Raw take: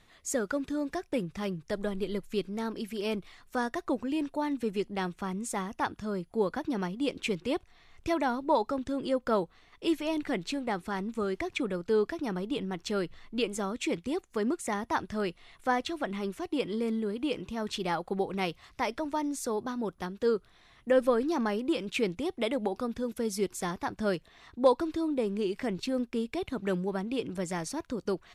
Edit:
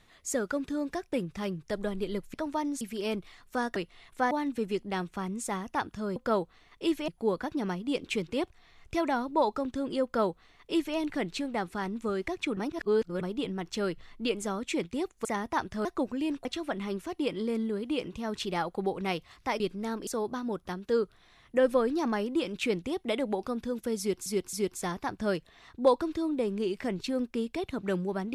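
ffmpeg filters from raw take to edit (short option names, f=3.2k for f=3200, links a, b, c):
-filter_complex "[0:a]asplit=16[a][b][c][d][e][f][g][h][i][j][k][l][m][n][o][p];[a]atrim=end=2.342[q];[b]atrim=start=18.928:end=19.402[r];[c]atrim=start=2.808:end=3.762[s];[d]atrim=start=15.228:end=15.782[t];[e]atrim=start=4.358:end=6.212[u];[f]atrim=start=9.168:end=10.092[v];[g]atrim=start=6.208:end=11.702[w];[h]atrim=start=11.698:end=12.342,asetpts=PTS-STARTPTS,areverse[x];[i]atrim=start=12.338:end=14.382[y];[j]atrim=start=14.628:end=15.232[z];[k]atrim=start=3.758:end=4.362[aa];[l]atrim=start=15.778:end=18.932[ab];[m]atrim=start=2.338:end=2.812[ac];[n]atrim=start=19.398:end=23.592[ad];[o]atrim=start=23.318:end=23.592[ae];[p]atrim=start=23.318[af];[q][r]acrossfade=d=0.004:c1=hsin:c2=hsin[ag];[ag][s]acrossfade=d=0.004:c1=hsin:c2=hsin[ah];[ah][t]acrossfade=d=0.004:c1=hsin:c2=hsin[ai];[ai][u]acrossfade=d=0.004:c1=hsin:c2=hsin[aj];[aj][v]acrossfade=d=0.004:c1=hsin:c2=hsin[ak];[ak][w]acrossfade=d=0.004:c1=hsin:c2=hsin[al];[al][x]acrossfade=d=0.004:c1=hsin:c2=hsin[am];[am][y]acrossfade=d=0.004:c1=hsin:c2=hsin[an];[an][z]acrossfade=d=0.004:c1=hsin:c2=hsin[ao];[ao][aa]acrossfade=d=0.004:c1=hsin:c2=hsin[ap];[ap][ab]acrossfade=d=0.004:c1=hsin:c2=hsin[aq];[aq][ac]acrossfade=d=0.004:c1=hsin:c2=hsin[ar];[ar][ad]acrossfade=d=0.004:c1=hsin:c2=hsin[as];[as][ae]acrossfade=d=0.004:c1=hsin:c2=hsin[at];[at][af]acrossfade=d=0.004:c1=hsin:c2=hsin"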